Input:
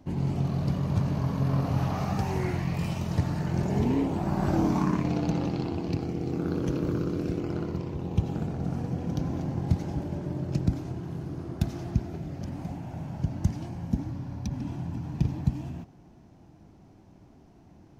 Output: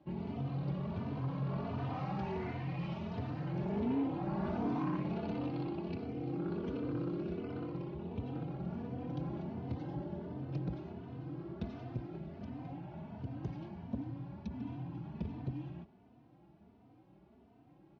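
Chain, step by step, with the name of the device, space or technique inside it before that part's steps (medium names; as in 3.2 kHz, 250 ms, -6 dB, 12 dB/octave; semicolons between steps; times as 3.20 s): 9.75–10.37 s: band-stop 2.4 kHz, Q 7.8; barber-pole flanger into a guitar amplifier (endless flanger 3.2 ms +1.4 Hz; saturation -23 dBFS, distortion -15 dB; cabinet simulation 80–3700 Hz, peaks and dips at 95 Hz -8 dB, 160 Hz -3 dB, 1.8 kHz -3 dB); trim -3.5 dB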